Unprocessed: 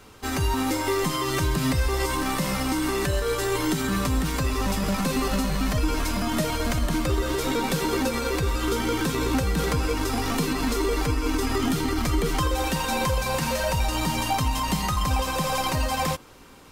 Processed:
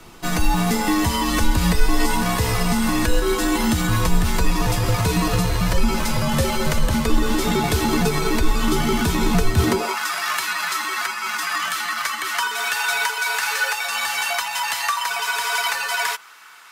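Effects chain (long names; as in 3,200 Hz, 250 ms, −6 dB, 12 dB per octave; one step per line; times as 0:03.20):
high-pass filter sweep 67 Hz → 1,500 Hz, 0:09.46–0:09.99
frequency shifter −84 Hz
level +5 dB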